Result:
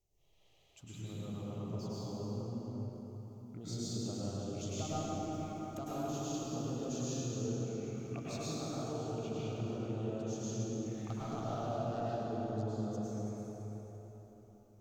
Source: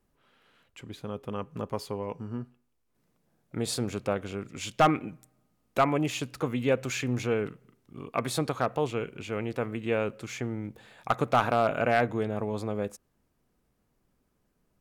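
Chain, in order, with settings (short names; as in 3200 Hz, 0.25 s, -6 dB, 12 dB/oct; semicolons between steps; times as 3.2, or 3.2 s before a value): thirty-one-band EQ 100 Hz +6 dB, 500 Hz -8 dB, 1000 Hz -9 dB, 1600 Hz -11 dB, 6300 Hz +9 dB, 10000 Hz -9 dB; echo with dull and thin repeats by turns 0.167 s, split 930 Hz, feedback 61%, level -12 dB; envelope phaser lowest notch 230 Hz, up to 2200 Hz, full sweep at -33 dBFS; compressor 3:1, threshold -41 dBFS, peak gain reduction 15 dB; plate-style reverb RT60 4.2 s, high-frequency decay 0.55×, pre-delay 90 ms, DRR -9.5 dB; gain -7 dB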